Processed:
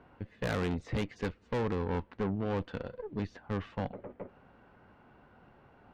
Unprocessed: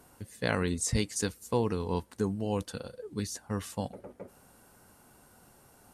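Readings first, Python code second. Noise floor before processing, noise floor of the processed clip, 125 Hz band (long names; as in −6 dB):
−60 dBFS, −62 dBFS, −1.5 dB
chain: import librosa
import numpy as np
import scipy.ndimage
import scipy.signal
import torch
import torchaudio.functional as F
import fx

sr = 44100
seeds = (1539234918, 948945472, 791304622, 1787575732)

y = scipy.signal.sosfilt(scipy.signal.butter(4, 2800.0, 'lowpass', fs=sr, output='sos'), x)
y = fx.tube_stage(y, sr, drive_db=33.0, bias=0.7)
y = F.gain(torch.from_numpy(y), 5.0).numpy()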